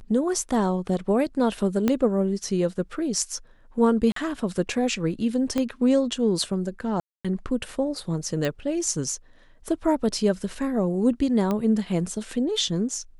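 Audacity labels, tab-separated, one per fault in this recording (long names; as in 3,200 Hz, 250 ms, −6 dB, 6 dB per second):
1.880000	1.880000	click −9 dBFS
4.120000	4.160000	drop-out 43 ms
5.580000	5.580000	click −13 dBFS
7.000000	7.250000	drop-out 246 ms
8.450000	8.450000	click
11.510000	11.510000	click −14 dBFS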